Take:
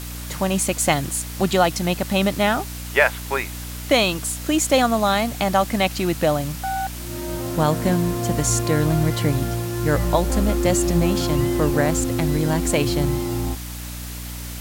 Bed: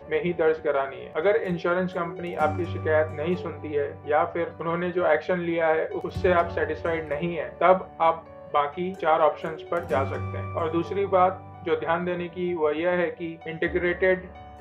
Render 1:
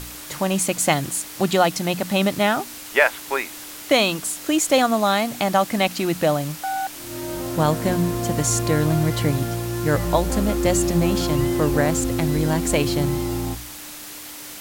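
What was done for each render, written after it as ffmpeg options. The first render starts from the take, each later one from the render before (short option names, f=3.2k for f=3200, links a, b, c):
-af "bandreject=f=60:t=h:w=4,bandreject=f=120:t=h:w=4,bandreject=f=180:t=h:w=4,bandreject=f=240:t=h:w=4"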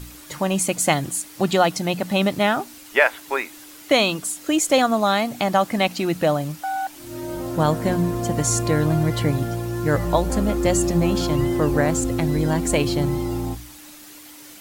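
-af "afftdn=nr=8:nf=-37"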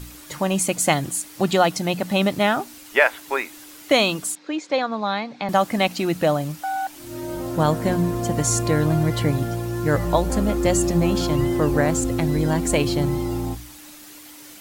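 -filter_complex "[0:a]asettb=1/sr,asplit=3[a][b][c];[a]atrim=end=4.354[d];[b]atrim=start=4.35:end=5.49,asetpts=PTS-STARTPTS,afade=t=in:d=0.004:c=qsin,afade=t=out:st=1.136:d=0.004:c=qsin,highpass=f=190:w=0.5412,highpass=f=190:w=1.3066,equalizer=f=250:t=q:w=4:g=-8,equalizer=f=360:t=q:w=4:g=-9,equalizer=f=660:t=q:w=4:g=-10,equalizer=f=1.3k:t=q:w=4:g=-6,equalizer=f=1.9k:t=q:w=4:g=-4,equalizer=f=3k:t=q:w=4:g=-10,lowpass=f=4.1k:w=0.5412,lowpass=f=4.1k:w=1.3066[e];[c]atrim=start=5.486[f];[d][e]acrossfade=d=0.004:c1=hsin:c2=qsin[g];[g][f]acrossfade=d=0.004:c1=qsin:c2=hsin"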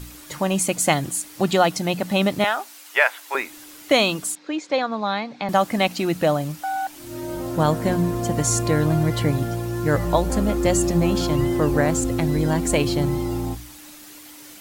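-filter_complex "[0:a]asettb=1/sr,asplit=3[a][b][c];[a]atrim=end=2.444[d];[b]atrim=start=2.44:end=3.35,asetpts=PTS-STARTPTS,afade=t=in:d=0.004:c=qsin,afade=t=out:st=0.906:d=0.004:c=qsin,highpass=660[e];[c]atrim=start=3.346[f];[d][e]acrossfade=d=0.004:c1=hsin:c2=qsin[g];[g][f]acrossfade=d=0.004:c1=qsin:c2=hsin"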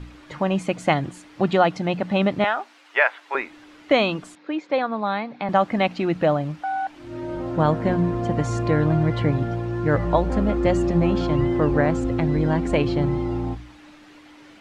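-af "lowpass=2.6k"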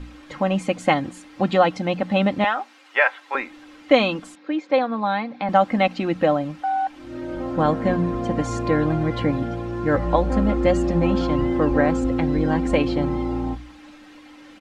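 -af "aecho=1:1:3.8:0.53"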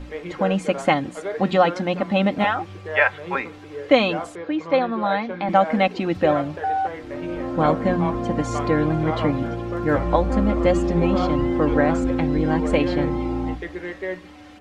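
-filter_complex "[1:a]volume=-7.5dB[a];[0:a][a]amix=inputs=2:normalize=0"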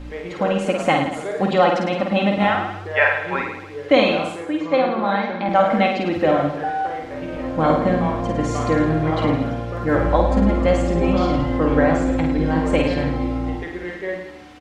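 -af "aecho=1:1:50|105|165.5|232|305.3:0.631|0.398|0.251|0.158|0.1"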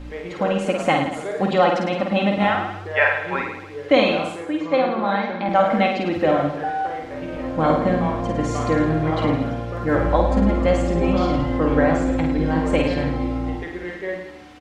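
-af "volume=-1dB"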